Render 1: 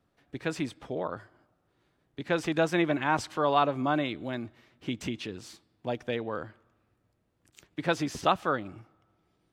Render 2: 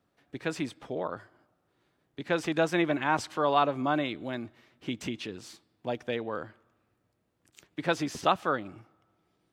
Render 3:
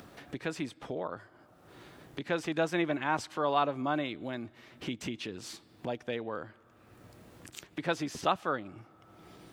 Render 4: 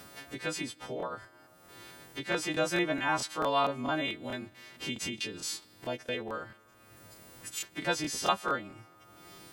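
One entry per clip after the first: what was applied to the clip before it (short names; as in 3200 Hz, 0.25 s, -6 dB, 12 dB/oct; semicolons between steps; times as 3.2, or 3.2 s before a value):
low shelf 75 Hz -10.5 dB
upward compressor, threshold -29 dBFS; gain -3.5 dB
frequency quantiser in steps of 2 st; crackling interface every 0.22 s, samples 1024, repeat, from 0.98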